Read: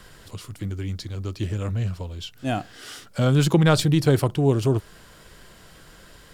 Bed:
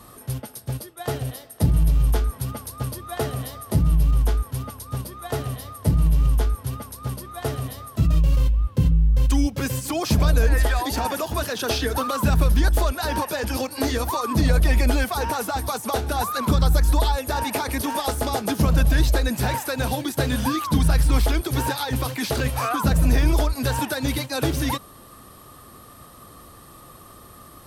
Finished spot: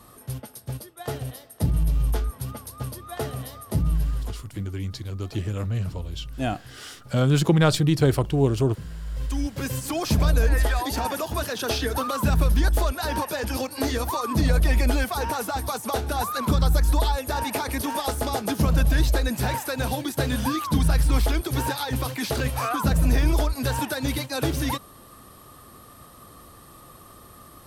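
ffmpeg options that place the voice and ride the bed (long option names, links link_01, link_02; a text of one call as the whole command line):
ffmpeg -i stem1.wav -i stem2.wav -filter_complex "[0:a]adelay=3950,volume=-1dB[link_01];[1:a]volume=13dB,afade=type=out:start_time=3.91:duration=0.51:silence=0.177828,afade=type=in:start_time=9:duration=0.81:silence=0.141254[link_02];[link_01][link_02]amix=inputs=2:normalize=0" out.wav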